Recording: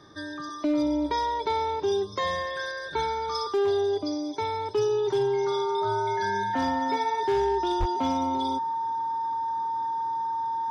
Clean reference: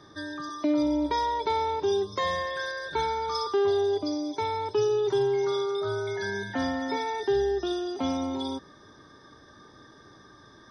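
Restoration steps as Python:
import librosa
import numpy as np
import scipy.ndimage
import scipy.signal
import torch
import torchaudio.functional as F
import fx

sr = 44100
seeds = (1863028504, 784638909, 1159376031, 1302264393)

y = fx.fix_declip(x, sr, threshold_db=-19.0)
y = fx.notch(y, sr, hz=910.0, q=30.0)
y = fx.highpass(y, sr, hz=140.0, slope=24, at=(7.79, 7.91), fade=0.02)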